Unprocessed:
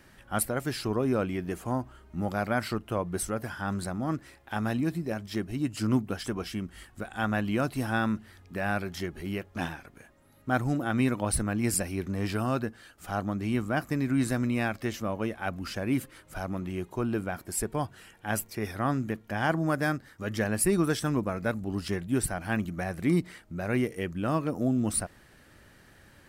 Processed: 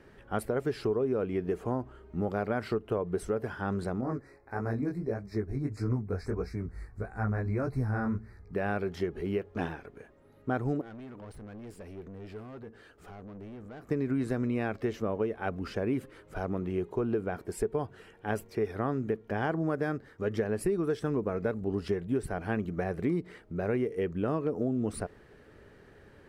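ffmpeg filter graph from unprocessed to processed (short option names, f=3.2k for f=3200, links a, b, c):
-filter_complex "[0:a]asettb=1/sr,asplit=3[a][b][c];[a]atrim=end=4.014[d];[b]atrim=start=4.01:end=8.55,asetpts=PTS-STARTPTS,afade=t=in:d=0.004:c=qsin,afade=t=out:st=4.536:d=0.004:c=qsin,asubboost=boost=6:cutoff=130,asuperstop=centerf=3100:order=8:qfactor=1.9,flanger=delay=15.5:depth=6.7:speed=1.6[e];[c]atrim=start=8.546[f];[d][e]acrossfade=d=0.004:c1=hsin:c2=qsin[g];[g][f]acrossfade=d=0.004:c1=qsin:c2=hsin,asettb=1/sr,asplit=3[h][i][j];[h]atrim=end=10.814[k];[i]atrim=start=10.81:end=13.89,asetpts=PTS-STARTPTS,afade=t=in:d=0.004:c=qsin,afade=t=out:st=3.076:d=0.004:c=qsin,acompressor=threshold=-44dB:ratio=2:attack=3.2:release=140:knee=1:detection=peak,aeval=exprs='(tanh(141*val(0)+0.2)-tanh(0.2))/141':c=same[l];[j]atrim=start=13.886[m];[k][l]acrossfade=d=0.004:c1=hsin:c2=qsin[n];[n][m]acrossfade=d=0.004:c1=qsin:c2=hsin,lowpass=f=1.8k:p=1,equalizer=f=430:w=3.8:g=13,acompressor=threshold=-26dB:ratio=6"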